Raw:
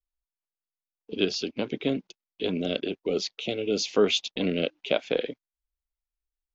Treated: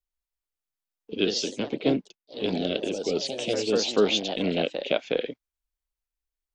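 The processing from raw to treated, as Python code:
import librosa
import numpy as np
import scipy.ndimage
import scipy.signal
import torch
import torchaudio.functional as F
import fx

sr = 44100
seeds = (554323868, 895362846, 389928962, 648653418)

y = fx.echo_pitch(x, sr, ms=193, semitones=2, count=3, db_per_echo=-6.0)
y = fx.band_widen(y, sr, depth_pct=70, at=(1.34, 2.42))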